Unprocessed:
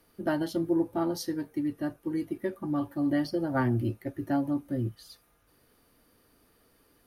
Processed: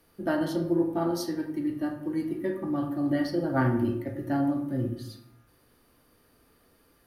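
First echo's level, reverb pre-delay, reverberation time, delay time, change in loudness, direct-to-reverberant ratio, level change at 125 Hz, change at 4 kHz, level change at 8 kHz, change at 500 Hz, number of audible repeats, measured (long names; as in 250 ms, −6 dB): no echo audible, 16 ms, 0.85 s, no echo audible, +1.5 dB, 2.5 dB, +1.5 dB, +1.0 dB, can't be measured, +2.5 dB, no echo audible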